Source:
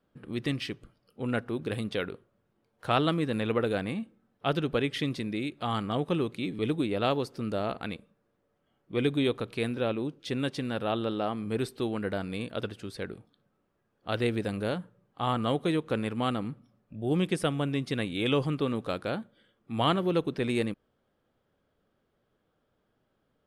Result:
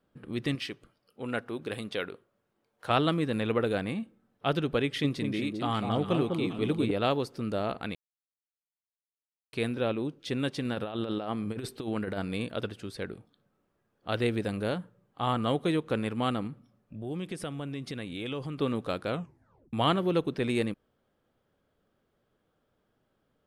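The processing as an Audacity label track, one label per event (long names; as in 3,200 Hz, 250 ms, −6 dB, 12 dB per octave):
0.550000	2.900000	low-shelf EQ 230 Hz −10 dB
4.840000	6.910000	delay that swaps between a low-pass and a high-pass 200 ms, split 1,000 Hz, feedback 50%, level −3.5 dB
7.950000	9.530000	silence
10.650000	12.550000	compressor whose output falls as the input rises −32 dBFS, ratio −0.5
16.470000	18.580000	downward compressor 2.5 to 1, threshold −36 dBFS
19.080000	19.080000	tape stop 0.65 s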